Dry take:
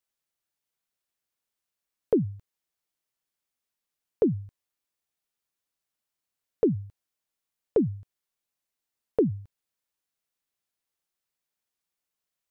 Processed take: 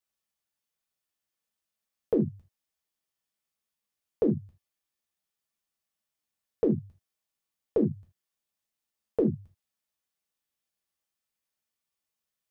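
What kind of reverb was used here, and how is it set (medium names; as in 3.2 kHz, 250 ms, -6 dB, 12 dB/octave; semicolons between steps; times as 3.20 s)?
gated-style reverb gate 100 ms falling, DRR 0.5 dB; trim -4 dB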